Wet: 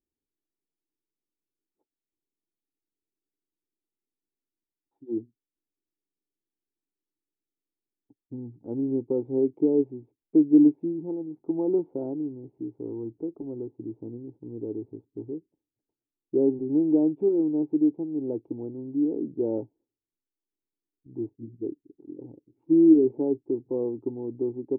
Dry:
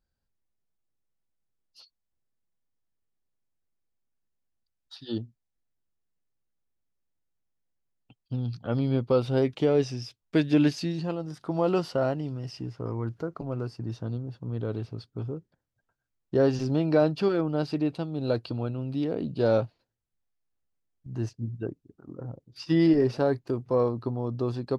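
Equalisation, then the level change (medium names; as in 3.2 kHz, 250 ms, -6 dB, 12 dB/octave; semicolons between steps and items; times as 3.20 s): cascade formant filter u; peaking EQ 410 Hz +13.5 dB 0.8 oct; 0.0 dB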